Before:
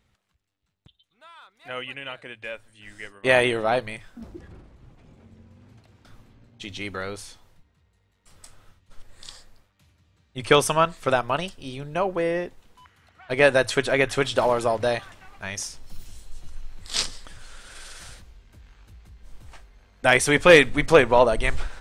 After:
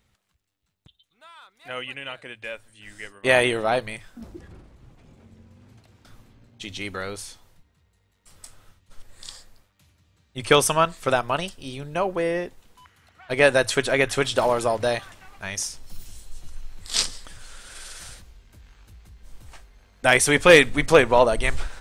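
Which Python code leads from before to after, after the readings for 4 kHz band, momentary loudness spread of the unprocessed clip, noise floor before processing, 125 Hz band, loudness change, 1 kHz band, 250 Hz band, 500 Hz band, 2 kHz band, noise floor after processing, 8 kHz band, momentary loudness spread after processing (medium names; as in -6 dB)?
+1.5 dB, 21 LU, -68 dBFS, 0.0 dB, +0.5 dB, 0.0 dB, 0.0 dB, 0.0 dB, +0.5 dB, -68 dBFS, +4.0 dB, 22 LU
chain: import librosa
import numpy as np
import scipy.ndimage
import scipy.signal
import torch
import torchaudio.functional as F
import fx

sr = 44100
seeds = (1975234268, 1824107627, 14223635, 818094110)

y = fx.high_shelf(x, sr, hz=5800.0, db=6.5)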